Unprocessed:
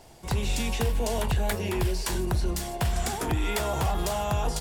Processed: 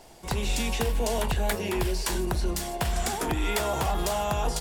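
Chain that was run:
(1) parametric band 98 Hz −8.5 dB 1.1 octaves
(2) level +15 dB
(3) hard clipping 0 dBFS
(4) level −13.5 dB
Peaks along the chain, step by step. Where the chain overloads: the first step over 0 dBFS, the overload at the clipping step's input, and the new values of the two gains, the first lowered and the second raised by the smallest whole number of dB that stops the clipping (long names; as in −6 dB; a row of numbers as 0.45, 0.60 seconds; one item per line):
−17.0, −2.0, −2.0, −15.5 dBFS
no step passes full scale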